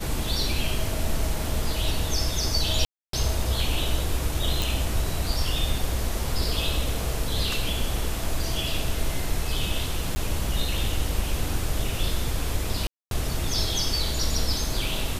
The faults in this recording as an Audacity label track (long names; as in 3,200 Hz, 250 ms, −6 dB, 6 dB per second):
2.850000	3.130000	drop-out 283 ms
4.620000	4.620000	click
10.150000	10.160000	drop-out 10 ms
12.870000	13.110000	drop-out 242 ms